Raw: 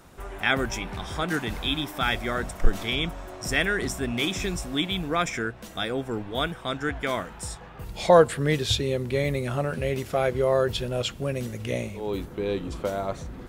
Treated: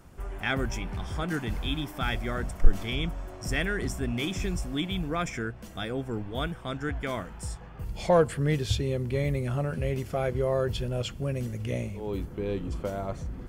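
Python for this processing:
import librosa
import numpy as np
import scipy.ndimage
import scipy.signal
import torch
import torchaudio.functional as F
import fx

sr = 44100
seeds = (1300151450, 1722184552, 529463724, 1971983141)

p1 = fx.low_shelf(x, sr, hz=200.0, db=10.0)
p2 = fx.notch(p1, sr, hz=3800.0, q=9.0)
p3 = 10.0 ** (-13.5 / 20.0) * np.tanh(p2 / 10.0 ** (-13.5 / 20.0))
p4 = p2 + (p3 * librosa.db_to_amplitude(-9.0))
y = p4 * librosa.db_to_amplitude(-8.5)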